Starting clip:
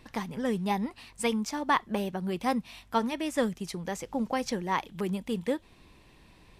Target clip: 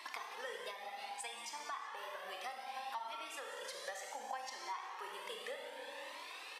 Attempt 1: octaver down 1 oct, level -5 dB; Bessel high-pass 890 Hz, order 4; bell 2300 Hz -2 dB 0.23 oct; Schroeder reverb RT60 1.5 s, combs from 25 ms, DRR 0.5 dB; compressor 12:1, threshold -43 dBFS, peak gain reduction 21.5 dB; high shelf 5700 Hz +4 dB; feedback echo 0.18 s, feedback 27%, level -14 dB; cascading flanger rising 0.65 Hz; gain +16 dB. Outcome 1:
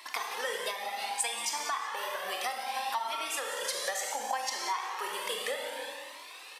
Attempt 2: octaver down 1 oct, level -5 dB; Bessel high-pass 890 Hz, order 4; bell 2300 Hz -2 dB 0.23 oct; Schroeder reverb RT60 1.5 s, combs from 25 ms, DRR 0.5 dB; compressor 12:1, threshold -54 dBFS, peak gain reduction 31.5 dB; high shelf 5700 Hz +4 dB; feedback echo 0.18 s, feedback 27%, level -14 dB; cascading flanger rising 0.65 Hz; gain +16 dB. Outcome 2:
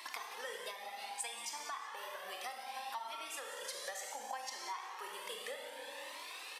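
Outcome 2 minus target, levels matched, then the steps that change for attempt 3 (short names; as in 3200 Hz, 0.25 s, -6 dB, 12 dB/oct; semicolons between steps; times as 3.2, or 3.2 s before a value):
8000 Hz band +4.5 dB
change: high shelf 5700 Hz -5.5 dB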